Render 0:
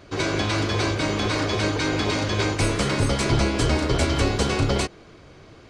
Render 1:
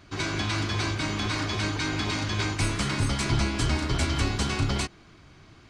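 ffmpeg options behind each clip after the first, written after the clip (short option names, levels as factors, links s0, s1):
-af "equalizer=f=500:w=1.9:g=-12.5,volume=0.708"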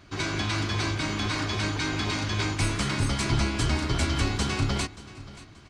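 -af "aecho=1:1:580|1160|1740:0.126|0.0403|0.0129"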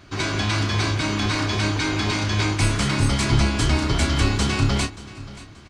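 -filter_complex "[0:a]asplit=2[s0][s1];[s1]adelay=29,volume=0.355[s2];[s0][s2]amix=inputs=2:normalize=0,volume=1.68"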